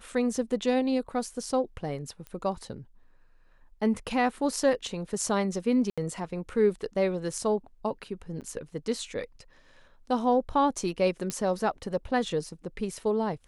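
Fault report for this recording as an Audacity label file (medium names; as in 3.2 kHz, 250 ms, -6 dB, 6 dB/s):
2.270000	2.270000	pop -26 dBFS
5.900000	5.980000	dropout 76 ms
8.410000	8.420000	dropout 7.8 ms
11.300000	11.300000	pop -16 dBFS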